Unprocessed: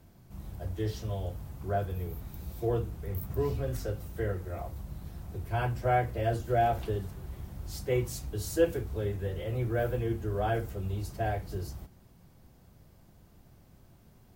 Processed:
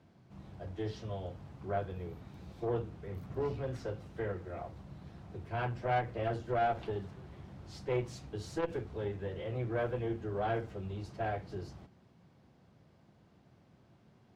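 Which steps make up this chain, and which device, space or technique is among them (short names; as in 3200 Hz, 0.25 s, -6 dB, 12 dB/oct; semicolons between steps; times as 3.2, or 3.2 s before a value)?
valve radio (BPF 120–4100 Hz; tube stage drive 22 dB, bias 0.5; core saturation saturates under 250 Hz)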